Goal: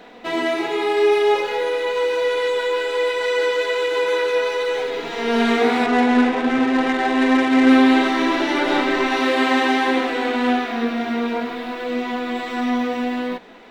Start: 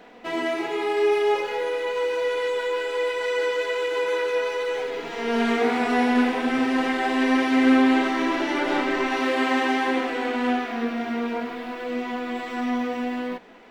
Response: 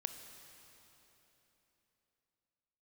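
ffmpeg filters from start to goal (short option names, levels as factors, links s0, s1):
-filter_complex "[0:a]equalizer=f=3800:t=o:w=0.21:g=7,asettb=1/sr,asplit=3[s0][s1][s2];[s0]atrim=end=5.864[s3];[s1]atrim=start=5.86:end=7.7,asetpts=PTS-STARTPTS,afade=t=in:d=0.004:c=qsin,afade=t=out:st=1.836:d=0.004:c=qsin,adynamicsmooth=sensitivity=2:basefreq=2100[s4];[s2]atrim=start=7.696[s5];[s3][s4]acrossfade=d=0.004:c1=hsin:c2=qsin[s6];[s6][s5]acrossfade=d=0.004:c1=qsin:c2=hsin,volume=1.68"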